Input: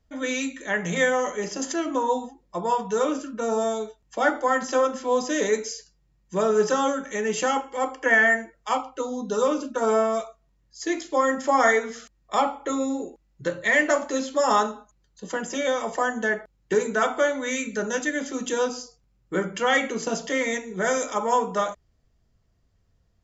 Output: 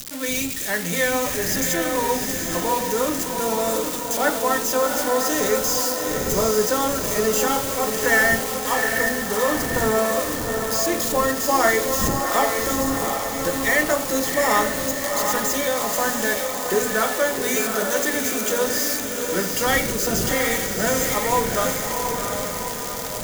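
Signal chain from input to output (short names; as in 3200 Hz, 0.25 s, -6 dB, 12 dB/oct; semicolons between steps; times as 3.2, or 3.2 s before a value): switching spikes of -18 dBFS; wind noise 270 Hz -38 dBFS; diffused feedback echo 0.761 s, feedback 58%, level -4 dB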